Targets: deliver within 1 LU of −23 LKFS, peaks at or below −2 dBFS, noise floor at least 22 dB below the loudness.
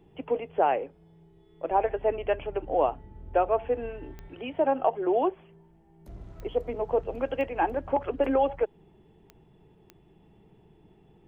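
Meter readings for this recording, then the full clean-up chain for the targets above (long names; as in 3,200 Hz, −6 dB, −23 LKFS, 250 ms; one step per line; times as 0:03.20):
number of clicks 5; integrated loudness −28.5 LKFS; sample peak −11.5 dBFS; target loudness −23.0 LKFS
→ click removal
level +5.5 dB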